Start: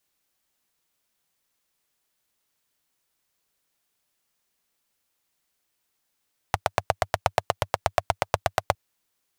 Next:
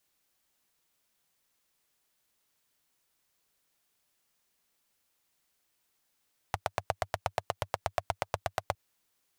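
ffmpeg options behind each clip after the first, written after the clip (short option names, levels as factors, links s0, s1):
-af "alimiter=limit=0.251:level=0:latency=1:release=99"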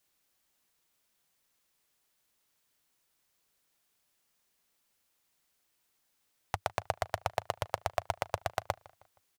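-filter_complex "[0:a]asplit=2[s0][s1];[s1]adelay=157,lowpass=f=4600:p=1,volume=0.0794,asplit=2[s2][s3];[s3]adelay=157,lowpass=f=4600:p=1,volume=0.43,asplit=2[s4][s5];[s5]adelay=157,lowpass=f=4600:p=1,volume=0.43[s6];[s0][s2][s4][s6]amix=inputs=4:normalize=0"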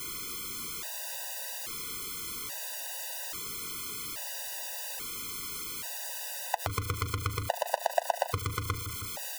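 -af "aeval=exprs='val(0)+0.5*0.02*sgn(val(0))':c=same,afftfilt=real='re*gt(sin(2*PI*0.6*pts/sr)*(1-2*mod(floor(b*sr/1024/500),2)),0)':imag='im*gt(sin(2*PI*0.6*pts/sr)*(1-2*mod(floor(b*sr/1024/500),2)),0)':win_size=1024:overlap=0.75,volume=1.78"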